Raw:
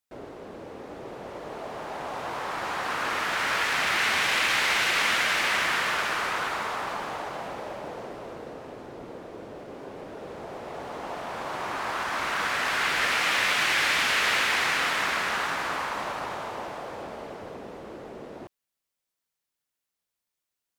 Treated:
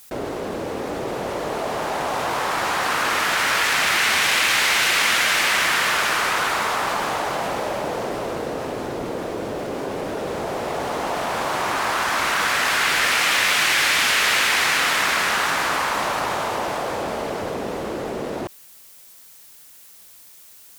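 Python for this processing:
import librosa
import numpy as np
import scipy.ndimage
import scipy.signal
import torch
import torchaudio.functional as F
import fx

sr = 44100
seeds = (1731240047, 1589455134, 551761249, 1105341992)

y = fx.high_shelf(x, sr, hz=5600.0, db=9.0)
y = fx.env_flatten(y, sr, amount_pct=50)
y = y * librosa.db_to_amplitude(3.5)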